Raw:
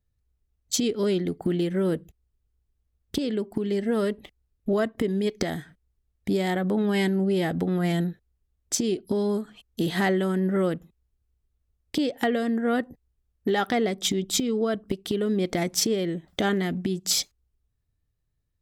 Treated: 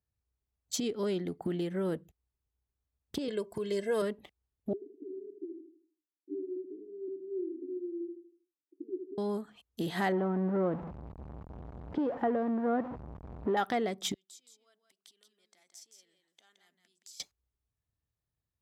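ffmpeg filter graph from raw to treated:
-filter_complex "[0:a]asettb=1/sr,asplit=3[a][b][c];[a]atrim=end=3.284[d];[b]atrim=start=3.28:end=4.02,asetpts=PTS-STARTPTS,afade=t=in:d=0.004:c=qsin,afade=t=out:st=0.736:d=0.004:c=qsin,equalizer=f=7.8k:t=o:w=1.8:g=9,aecho=1:1:1.9:0.85,atrim=end_sample=32634[e];[c]atrim=start=4.016[f];[d][e]acrossfade=d=0.004:c1=hsin:c2=qsin[g];[g][f]acrossfade=d=0.004:c1=qsin:c2=hsin,asettb=1/sr,asplit=3[h][i][j];[h]atrim=end=4.734[k];[i]atrim=start=4.73:end=9.18,asetpts=PTS-STARTPTS,afade=t=in:d=0.004:c=qsin,afade=t=out:st=4.446:d=0.004:c=qsin,asuperpass=centerf=330:order=8:qfactor=3.2,aecho=1:1:79|158|237|316|395:0.473|0.189|0.0757|0.0303|0.0121,atrim=end_sample=196245[l];[j]atrim=start=9.176[m];[k][l]acrossfade=d=0.004:c1=hsin:c2=qsin[n];[n][m]acrossfade=d=0.004:c1=qsin:c2=hsin,asettb=1/sr,asplit=3[o][p][q];[o]atrim=end=10.124[r];[p]atrim=start=10.12:end=13.57,asetpts=PTS-STARTPTS,afade=t=in:d=0.004:c=qsin,afade=t=out:st=3.446:d=0.004:c=qsin,aeval=exprs='val(0)+0.5*0.0447*sgn(val(0))':c=same,lowpass=1.1k[s];[q]atrim=start=13.566[t];[r][s]acrossfade=d=0.004:c1=hsin:c2=qsin[u];[u][t]acrossfade=d=0.004:c1=qsin:c2=hsin,asettb=1/sr,asplit=3[v][w][x];[v]atrim=end=14.144[y];[w]atrim=start=14.14:end=17.2,asetpts=PTS-STARTPTS,afade=t=in:d=0.004:c=qsin,afade=t=out:st=3.056:d=0.004:c=qsin,acompressor=threshold=-39dB:ratio=8:attack=3.2:release=140:knee=1:detection=peak,bandpass=f=7.4k:t=q:w=0.99,aecho=1:1:170:0.473,atrim=end_sample=134946[z];[x]atrim=start=17.196[aa];[y][z]acrossfade=d=0.004:c1=hsin:c2=qsin[ab];[ab][aa]acrossfade=d=0.004:c1=qsin:c2=hsin,highpass=60,equalizer=f=900:t=o:w=1.3:g=6,volume=-9dB"

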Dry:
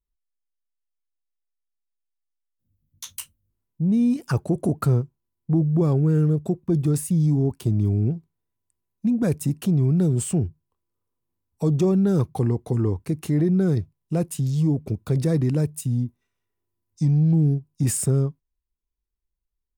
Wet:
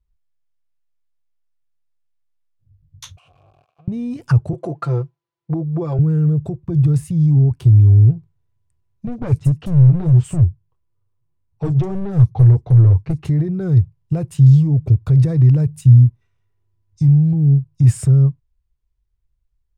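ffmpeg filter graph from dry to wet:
-filter_complex "[0:a]asettb=1/sr,asplit=3[a][b][c];[a]atrim=end=3.174[d];[b]atrim=start=3.17:end=3.88,asetpts=PTS-STARTPTS,afade=t=in:d=0.004:c=qsin,afade=t=out:st=0.706:d=0.004:c=qsin,aeval=exprs='val(0)+0.5*0.0224*sgn(val(0))':c=same,acompressor=threshold=-33dB:ratio=5:attack=3.2:release=140:knee=1:detection=peak,asplit=3[e][f][g];[e]bandpass=f=730:t=q:w=8,volume=0dB[h];[f]bandpass=f=1.09k:t=q:w=8,volume=-6dB[i];[g]bandpass=f=2.44k:t=q:w=8,volume=-9dB[j];[h][i][j]amix=inputs=3:normalize=0[k];[c]atrim=start=3.876[l];[d][k]acrossfade=d=0.004:c1=hsin:c2=qsin[m];[m][l]acrossfade=d=0.004:c1=qsin:c2=hsin,asettb=1/sr,asplit=3[n][o][p];[n]atrim=end=4.534[q];[o]atrim=start=4.53:end=5.99,asetpts=PTS-STARTPTS,afade=t=in:d=0.004:c=qsin,afade=t=out:st=1.456:d=0.004:c=qsin,highpass=370,lowpass=6.2k,aecho=1:1:5.9:0.88,atrim=end_sample=64386[r];[p]atrim=start=5.986[s];[q][r]acrossfade=d=0.004:c1=hsin:c2=qsin[t];[t][s]acrossfade=d=0.004:c1=qsin:c2=hsin,asettb=1/sr,asplit=3[u][v][w];[u]atrim=end=9.074[x];[v]atrim=start=9.07:end=13.25,asetpts=PTS-STARTPTS,afade=t=in:d=0.004:c=qsin,afade=t=out:st=4.176:d=0.004:c=qsin,flanger=delay=3.7:depth=7.1:regen=-20:speed=1.7:shape=triangular,aeval=exprs='clip(val(0),-1,0.0631)':c=same,acrossover=split=5000[y][z];[z]adelay=40[aa];[y][aa]amix=inputs=2:normalize=0,atrim=end_sample=184338[ab];[w]atrim=start=13.246[ac];[x][ab]acrossfade=d=0.004:c1=hsin:c2=qsin[ad];[ad][ac]acrossfade=d=0.004:c1=qsin:c2=hsin,aemphasis=mode=reproduction:type=50fm,alimiter=limit=-20dB:level=0:latency=1:release=225,lowshelf=f=160:t=q:w=3:g=8.5,volume=5.5dB"

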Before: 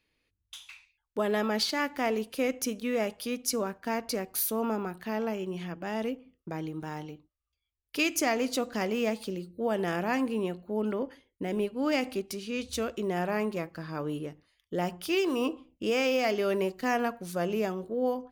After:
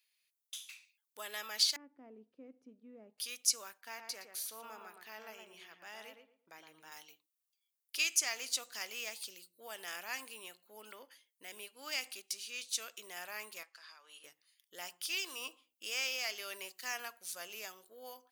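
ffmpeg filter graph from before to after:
-filter_complex "[0:a]asettb=1/sr,asplit=3[a][b][c];[a]atrim=end=1.764[d];[b]atrim=start=1.76:end=3.18,asetpts=PTS-STARTPTS,afade=t=in:d=0.004:c=qsin,afade=t=out:st=1.416:d=0.004:c=qsin,lowpass=f=260:t=q:w=1.6,acontrast=30[e];[c]atrim=start=3.176[f];[d][e]acrossfade=d=0.004:c1=hsin:c2=qsin[g];[g][f]acrossfade=d=0.004:c1=qsin:c2=hsin,asettb=1/sr,asplit=3[h][i][j];[h]atrim=end=3.814[k];[i]atrim=start=3.81:end=6.92,asetpts=PTS-STARTPTS,afade=t=in:d=0.004:c=qsin,afade=t=out:st=3.106:d=0.004:c=qsin,highshelf=f=4.1k:g=-11.5,asplit=2[l][m];[m]adelay=115,lowpass=f=1.4k:p=1,volume=-4dB,asplit=2[n][o];[o]adelay=115,lowpass=f=1.4k:p=1,volume=0.28,asplit=2[p][q];[q]adelay=115,lowpass=f=1.4k:p=1,volume=0.28,asplit=2[r][s];[s]adelay=115,lowpass=f=1.4k:p=1,volume=0.28[t];[l][n][p][r][t]amix=inputs=5:normalize=0,atrim=end_sample=137151[u];[j]atrim=start=6.916[v];[k][u]acrossfade=d=0.004:c1=hsin:c2=qsin[w];[w][v]acrossfade=d=0.004:c1=qsin:c2=hsin,asettb=1/sr,asplit=3[x][y][z];[x]atrim=end=13.634[aa];[y]atrim=start=13.63:end=14.24,asetpts=PTS-STARTPTS,afade=t=in:d=0.004:c=qsin,afade=t=out:st=0.606:d=0.004:c=qsin,highpass=690,lowpass=6.7k,acompressor=threshold=-41dB:ratio=12:attack=3.2:release=140:knee=1:detection=peak[ab];[z]atrim=start=14.236[ac];[aa][ab]acrossfade=d=0.004:c1=hsin:c2=qsin[ad];[ad][ac]acrossfade=d=0.004:c1=qsin:c2=hsin,aderivative,acrossover=split=9200[ae][af];[af]acompressor=threshold=-54dB:ratio=4:attack=1:release=60[ag];[ae][ag]amix=inputs=2:normalize=0,lowshelf=f=470:g=-11,volume=5dB"

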